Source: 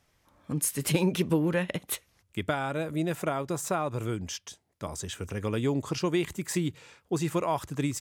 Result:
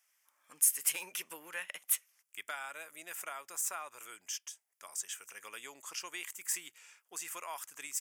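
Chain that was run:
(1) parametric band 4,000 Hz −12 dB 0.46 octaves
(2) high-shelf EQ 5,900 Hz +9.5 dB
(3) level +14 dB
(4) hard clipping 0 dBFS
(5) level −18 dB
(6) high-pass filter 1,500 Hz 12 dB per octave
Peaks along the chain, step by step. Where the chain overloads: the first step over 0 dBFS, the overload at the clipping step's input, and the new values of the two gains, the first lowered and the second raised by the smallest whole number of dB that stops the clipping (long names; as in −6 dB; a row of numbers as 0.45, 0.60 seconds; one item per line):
−12.0, −8.5, +5.5, 0.0, −18.0, −16.5 dBFS
step 3, 5.5 dB
step 3 +8 dB, step 5 −12 dB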